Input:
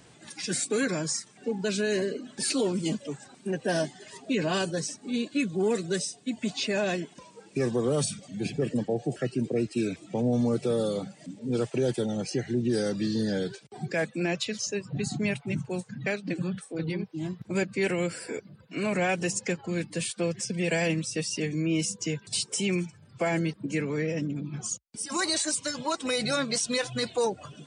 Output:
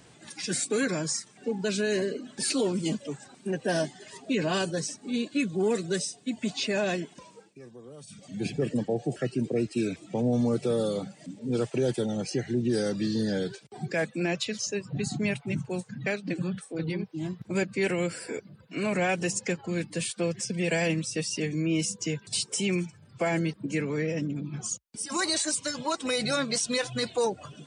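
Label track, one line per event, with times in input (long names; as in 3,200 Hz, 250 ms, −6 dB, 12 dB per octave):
7.330000	8.290000	duck −20.5 dB, fades 0.22 s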